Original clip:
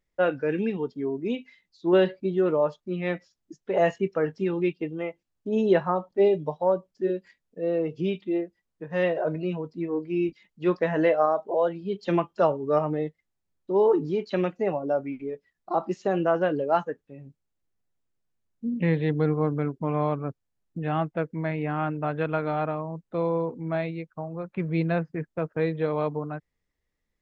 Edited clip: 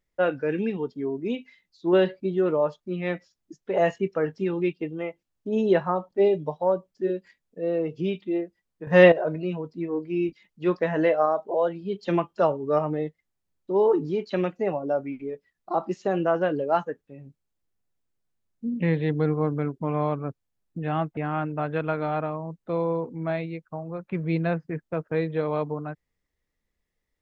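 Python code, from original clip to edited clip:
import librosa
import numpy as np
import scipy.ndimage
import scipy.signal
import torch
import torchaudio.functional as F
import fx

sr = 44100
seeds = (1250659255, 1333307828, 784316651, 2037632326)

y = fx.edit(x, sr, fx.clip_gain(start_s=8.87, length_s=0.25, db=11.0),
    fx.cut(start_s=21.17, length_s=0.45), tone=tone)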